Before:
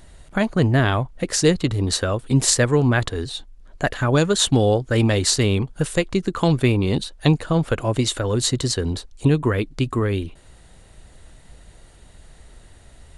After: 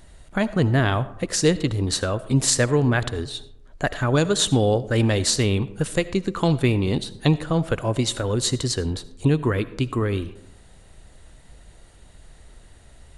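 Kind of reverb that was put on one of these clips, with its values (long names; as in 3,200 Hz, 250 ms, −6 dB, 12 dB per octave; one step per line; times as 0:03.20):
comb and all-pass reverb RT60 0.85 s, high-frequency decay 0.4×, pre-delay 35 ms, DRR 16 dB
level −2 dB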